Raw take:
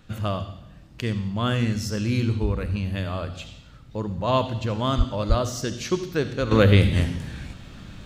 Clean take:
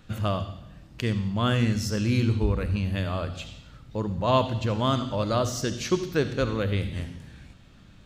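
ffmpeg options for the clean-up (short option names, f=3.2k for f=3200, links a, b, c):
-filter_complex "[0:a]asplit=3[a][b][c];[a]afade=t=out:st=4.97:d=0.02[d];[b]highpass=f=140:w=0.5412,highpass=f=140:w=1.3066,afade=t=in:st=4.97:d=0.02,afade=t=out:st=5.09:d=0.02[e];[c]afade=t=in:st=5.09:d=0.02[f];[d][e][f]amix=inputs=3:normalize=0,asplit=3[g][h][i];[g]afade=t=out:st=5.28:d=0.02[j];[h]highpass=f=140:w=0.5412,highpass=f=140:w=1.3066,afade=t=in:st=5.28:d=0.02,afade=t=out:st=5.4:d=0.02[k];[i]afade=t=in:st=5.4:d=0.02[l];[j][k][l]amix=inputs=3:normalize=0,asetnsamples=n=441:p=0,asendcmd='6.51 volume volume -11dB',volume=0dB"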